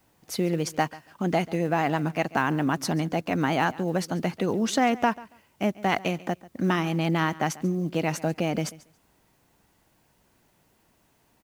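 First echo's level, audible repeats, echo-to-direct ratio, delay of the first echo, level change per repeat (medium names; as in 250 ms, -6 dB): -20.0 dB, 2, -20.0 dB, 140 ms, -14.5 dB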